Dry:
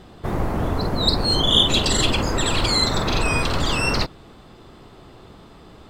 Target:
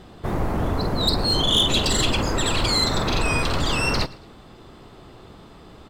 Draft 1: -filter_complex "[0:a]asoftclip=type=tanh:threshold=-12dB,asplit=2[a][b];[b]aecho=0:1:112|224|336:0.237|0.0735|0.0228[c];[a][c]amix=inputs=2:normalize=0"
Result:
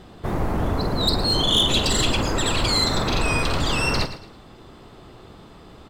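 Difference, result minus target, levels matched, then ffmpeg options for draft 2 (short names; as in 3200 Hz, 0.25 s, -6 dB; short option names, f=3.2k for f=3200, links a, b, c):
echo-to-direct +8.5 dB
-filter_complex "[0:a]asoftclip=type=tanh:threshold=-12dB,asplit=2[a][b];[b]aecho=0:1:112|224:0.0891|0.0276[c];[a][c]amix=inputs=2:normalize=0"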